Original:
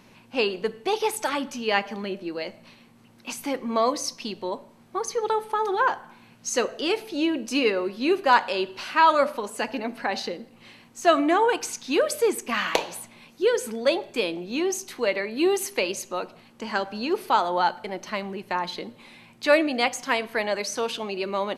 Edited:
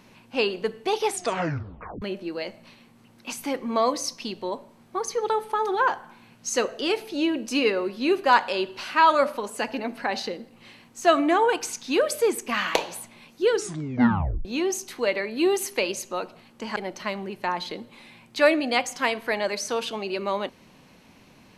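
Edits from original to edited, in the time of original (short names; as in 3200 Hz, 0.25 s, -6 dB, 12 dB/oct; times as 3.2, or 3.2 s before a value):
1.05 tape stop 0.97 s
13.49 tape stop 0.96 s
16.76–17.83 cut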